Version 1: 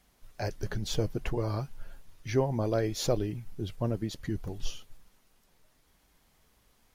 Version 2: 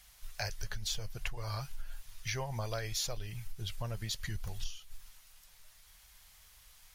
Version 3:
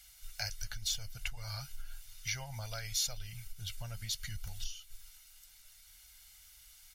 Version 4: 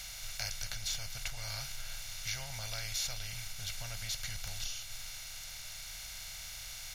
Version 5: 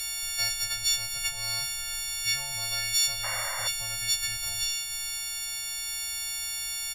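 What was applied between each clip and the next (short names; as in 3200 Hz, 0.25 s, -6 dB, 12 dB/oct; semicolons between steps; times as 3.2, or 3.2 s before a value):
passive tone stack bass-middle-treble 10-0-10; compressor 6:1, threshold -45 dBFS, peak gain reduction 16 dB; gain +11.5 dB
passive tone stack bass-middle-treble 5-5-5; comb 1.4 ms, depth 59%; gain +7.5 dB
per-bin compression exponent 0.4; gain -5.5 dB
frequency quantiser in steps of 4 st; doubler 33 ms -13 dB; painted sound noise, 3.23–3.68, 510–2300 Hz -37 dBFS; gain +1 dB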